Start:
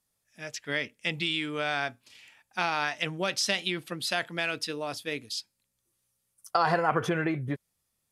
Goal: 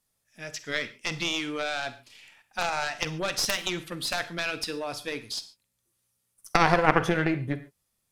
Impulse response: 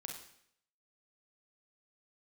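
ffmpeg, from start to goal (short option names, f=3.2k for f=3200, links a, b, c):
-filter_complex "[0:a]aeval=exprs='if(lt(val(0),0),0.708*val(0),val(0))':c=same,aeval=exprs='0.316*(cos(1*acos(clip(val(0)/0.316,-1,1)))-cos(1*PI/2))+0.158*(cos(4*acos(clip(val(0)/0.316,-1,1)))-cos(4*PI/2))+0.0126*(cos(5*acos(clip(val(0)/0.316,-1,1)))-cos(5*PI/2))+0.0355*(cos(6*acos(clip(val(0)/0.316,-1,1)))-cos(6*PI/2))+0.0178*(cos(7*acos(clip(val(0)/0.316,-1,1)))-cos(7*PI/2))':c=same,asplit=2[a][b];[1:a]atrim=start_sample=2205,afade=t=out:st=0.2:d=0.01,atrim=end_sample=9261[c];[b][c]afir=irnorm=-1:irlink=0,volume=-2.5dB[d];[a][d]amix=inputs=2:normalize=0,volume=1.5dB"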